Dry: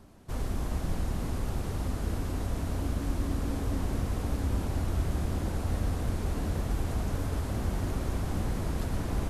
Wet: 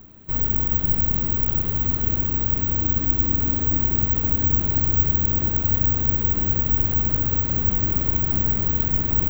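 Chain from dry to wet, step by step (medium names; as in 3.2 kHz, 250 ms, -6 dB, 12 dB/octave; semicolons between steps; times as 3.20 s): low-pass 4 kHz 24 dB/octave; peaking EQ 740 Hz -6.5 dB 1.5 oct; careless resampling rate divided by 2×, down filtered, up zero stuff; trim +6 dB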